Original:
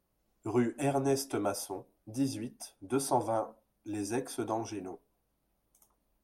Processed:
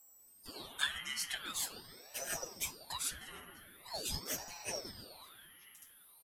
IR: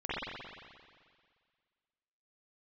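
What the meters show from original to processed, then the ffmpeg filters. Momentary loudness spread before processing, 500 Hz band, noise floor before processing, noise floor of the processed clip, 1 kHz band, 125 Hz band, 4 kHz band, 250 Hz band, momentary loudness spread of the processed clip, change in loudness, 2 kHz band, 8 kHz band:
14 LU, -17.0 dB, -78 dBFS, -62 dBFS, -13.0 dB, -15.5 dB, +8.0 dB, -22.0 dB, 19 LU, -5.5 dB, +5.0 dB, +2.0 dB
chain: -filter_complex "[0:a]aecho=1:1:5.7:0.97,acompressor=threshold=-35dB:ratio=6,aeval=exprs='val(0)+0.000708*sin(2*PI*11000*n/s)':c=same,flanger=delay=7.8:depth=1.7:regen=84:speed=0.67:shape=triangular,highpass=f=2.5k:t=q:w=5,asplit=2[a][b];[b]adelay=932.9,volume=-16dB,highshelf=f=4k:g=-21[c];[a][c]amix=inputs=2:normalize=0,asplit=2[d][e];[1:a]atrim=start_sample=2205,asetrate=28665,aresample=44100[f];[e][f]afir=irnorm=-1:irlink=0,volume=-11.5dB[g];[d][g]amix=inputs=2:normalize=0,aeval=exprs='val(0)*sin(2*PI*1900*n/s+1900*0.75/0.44*sin(2*PI*0.44*n/s))':c=same,volume=9.5dB"

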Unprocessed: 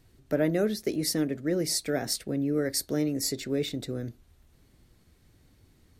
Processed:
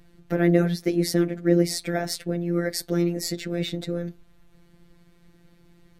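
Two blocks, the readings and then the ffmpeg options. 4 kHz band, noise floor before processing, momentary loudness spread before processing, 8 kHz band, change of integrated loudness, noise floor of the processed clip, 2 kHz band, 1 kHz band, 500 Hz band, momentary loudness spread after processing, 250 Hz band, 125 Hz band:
+0.5 dB, -63 dBFS, 6 LU, -2.0 dB, +4.0 dB, -57 dBFS, +5.0 dB, +6.0 dB, +4.0 dB, 9 LU, +5.0 dB, +8.0 dB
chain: -af "afftfilt=real='hypot(re,im)*cos(PI*b)':imag='0':win_size=1024:overlap=0.75,bass=f=250:g=2,treble=f=4k:g=-8,volume=9dB"

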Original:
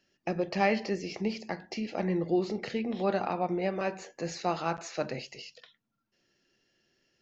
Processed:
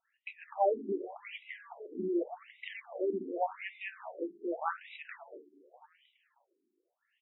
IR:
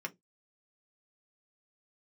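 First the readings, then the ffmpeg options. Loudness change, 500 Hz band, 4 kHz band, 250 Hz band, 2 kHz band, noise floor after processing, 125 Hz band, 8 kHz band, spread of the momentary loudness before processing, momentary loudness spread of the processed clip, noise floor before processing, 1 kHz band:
-5.5 dB, -4.0 dB, -11.0 dB, -8.0 dB, -6.0 dB, -82 dBFS, under -15 dB, n/a, 10 LU, 16 LU, -81 dBFS, -4.0 dB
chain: -filter_complex "[0:a]asplit=7[a][b][c][d][e][f][g];[b]adelay=208,afreqshift=74,volume=-15dB[h];[c]adelay=416,afreqshift=148,volume=-19.3dB[i];[d]adelay=624,afreqshift=222,volume=-23.6dB[j];[e]adelay=832,afreqshift=296,volume=-27.9dB[k];[f]adelay=1040,afreqshift=370,volume=-32.2dB[l];[g]adelay=1248,afreqshift=444,volume=-36.5dB[m];[a][h][i][j][k][l][m]amix=inputs=7:normalize=0,asplit=2[n][o];[1:a]atrim=start_sample=2205[p];[o][p]afir=irnorm=-1:irlink=0,volume=-15dB[q];[n][q]amix=inputs=2:normalize=0,afftfilt=real='re*between(b*sr/1024,290*pow(2800/290,0.5+0.5*sin(2*PI*0.86*pts/sr))/1.41,290*pow(2800/290,0.5+0.5*sin(2*PI*0.86*pts/sr))*1.41)':imag='im*between(b*sr/1024,290*pow(2800/290,0.5+0.5*sin(2*PI*0.86*pts/sr))/1.41,290*pow(2800/290,0.5+0.5*sin(2*PI*0.86*pts/sr))*1.41)':win_size=1024:overlap=0.75"

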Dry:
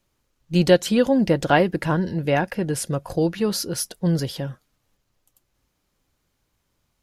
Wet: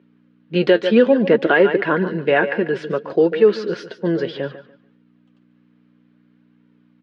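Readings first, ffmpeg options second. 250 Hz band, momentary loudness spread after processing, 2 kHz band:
+2.0 dB, 12 LU, +7.0 dB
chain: -af "aecho=1:1:145|290|435:0.224|0.0493|0.0108,flanger=delay=2.1:depth=6.9:regen=50:speed=0.6:shape=sinusoidal,aeval=exprs='val(0)+0.00251*(sin(2*PI*60*n/s)+sin(2*PI*2*60*n/s)/2+sin(2*PI*3*60*n/s)/3+sin(2*PI*4*60*n/s)/4+sin(2*PI*5*60*n/s)/5)':c=same,highpass=f=210:w=0.5412,highpass=f=210:w=1.3066,equalizer=f=280:t=q:w=4:g=-5,equalizer=f=420:t=q:w=4:g=7,equalizer=f=800:t=q:w=4:g=-7,equalizer=f=1.6k:t=q:w=4:g=5,lowpass=f=3.2k:w=0.5412,lowpass=f=3.2k:w=1.3066,alimiter=level_in=12dB:limit=-1dB:release=50:level=0:latency=1,volume=-2.5dB"

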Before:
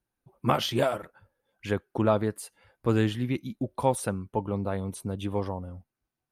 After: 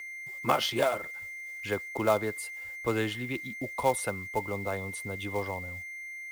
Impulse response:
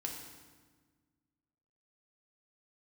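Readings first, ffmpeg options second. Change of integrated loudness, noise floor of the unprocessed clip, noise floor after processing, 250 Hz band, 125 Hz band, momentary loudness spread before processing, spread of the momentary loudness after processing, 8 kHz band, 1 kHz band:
-2.5 dB, under -85 dBFS, -41 dBFS, -7.0 dB, -8.5 dB, 12 LU, 11 LU, +1.0 dB, -0.5 dB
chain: -filter_complex "[0:a]lowshelf=f=250:g=-2.5,aeval=exprs='val(0)+0.0126*sin(2*PI*2100*n/s)':c=same,asubboost=boost=2.5:cutoff=100,acrossover=split=320|3000[a][b][c];[a]acompressor=threshold=-52dB:ratio=1.5[d];[d][b][c]amix=inputs=3:normalize=0,acrossover=split=350|5700[e][f][g];[f]acrusher=bits=4:mode=log:mix=0:aa=0.000001[h];[e][h][g]amix=inputs=3:normalize=0"

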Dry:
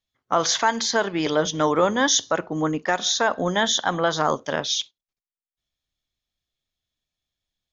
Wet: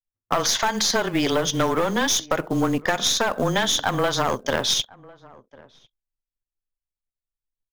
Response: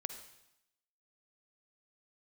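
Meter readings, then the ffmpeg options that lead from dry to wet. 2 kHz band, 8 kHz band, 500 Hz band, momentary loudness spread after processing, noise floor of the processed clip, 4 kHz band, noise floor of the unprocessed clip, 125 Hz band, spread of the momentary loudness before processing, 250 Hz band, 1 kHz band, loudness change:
-0.5 dB, n/a, -1.0 dB, 3 LU, under -85 dBFS, +1.5 dB, under -85 dBFS, +3.5 dB, 6 LU, +1.0 dB, -1.5 dB, 0.0 dB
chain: -filter_complex "[0:a]anlmdn=0.0398,highshelf=f=2k:g=2,afreqshift=-18,aeval=exprs='(tanh(5.62*val(0)+0.45)-tanh(0.45))/5.62':c=same,acompressor=threshold=-24dB:ratio=16,acrusher=bits=6:mode=log:mix=0:aa=0.000001,asplit=2[a][b];[b]adelay=1050,volume=-23dB,highshelf=f=4k:g=-23.6[c];[a][c]amix=inputs=2:normalize=0,volume=7dB"

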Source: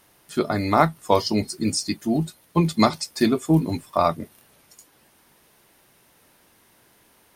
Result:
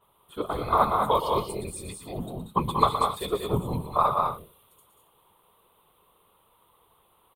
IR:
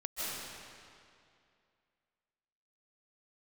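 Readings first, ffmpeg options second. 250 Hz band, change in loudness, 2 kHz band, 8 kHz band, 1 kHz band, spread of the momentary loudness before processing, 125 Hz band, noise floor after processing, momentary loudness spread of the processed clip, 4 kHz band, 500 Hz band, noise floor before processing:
-12.5 dB, -4.0 dB, -9.5 dB, -9.5 dB, +1.0 dB, 6 LU, -7.5 dB, -65 dBFS, 14 LU, -7.0 dB, -4.5 dB, -59 dBFS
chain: -af "firequalizer=gain_entry='entry(150,0);entry(270,-27);entry(410,5);entry(640,-4);entry(1100,10);entry(1600,-14);entry(3400,2);entry(5200,-30);entry(8800,-6);entry(14000,-2)':delay=0.05:min_phase=1,afftfilt=real='hypot(re,im)*cos(2*PI*random(0))':imag='hypot(re,im)*sin(2*PI*random(1))':win_size=512:overlap=0.75,aecho=1:1:118|185|209|272:0.335|0.473|0.501|0.158,adynamicequalizer=threshold=0.01:dfrequency=2800:dqfactor=0.7:tfrequency=2800:tqfactor=0.7:attack=5:release=100:ratio=0.375:range=3.5:mode=boostabove:tftype=highshelf"

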